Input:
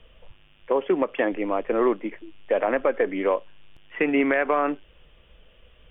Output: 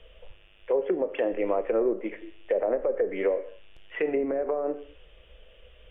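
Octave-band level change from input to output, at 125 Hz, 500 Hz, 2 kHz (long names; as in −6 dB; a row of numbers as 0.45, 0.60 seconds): can't be measured, −2.0 dB, −11.0 dB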